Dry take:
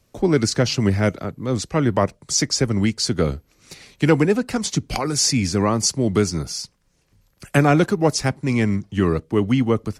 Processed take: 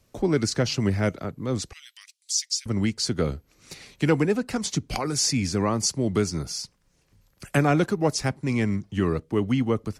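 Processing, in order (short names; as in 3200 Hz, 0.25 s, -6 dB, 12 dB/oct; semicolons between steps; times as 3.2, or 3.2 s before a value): 1.73–2.66 inverse Chebyshev high-pass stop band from 510 Hz, stop band 80 dB; in parallel at -3 dB: compressor, threshold -31 dBFS, peak gain reduction 19.5 dB; on the sum: gain -6 dB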